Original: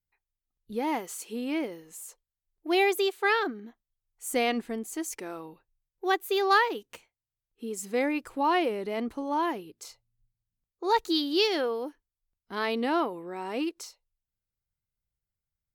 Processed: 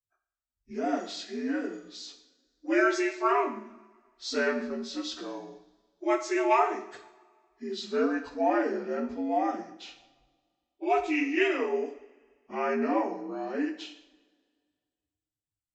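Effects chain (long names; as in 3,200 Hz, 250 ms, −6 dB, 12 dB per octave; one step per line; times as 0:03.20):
partials spread apart or drawn together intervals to 81%
noise reduction from a noise print of the clip's start 11 dB
coupled-rooms reverb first 0.62 s, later 1.9 s, from −19 dB, DRR 5.5 dB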